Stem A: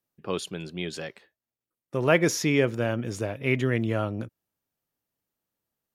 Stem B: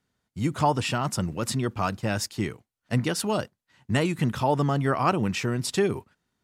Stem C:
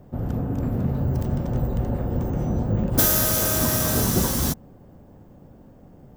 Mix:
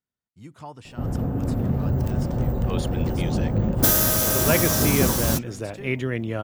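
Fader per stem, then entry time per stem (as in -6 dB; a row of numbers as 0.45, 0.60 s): -1.5, -17.0, +0.5 dB; 2.40, 0.00, 0.85 s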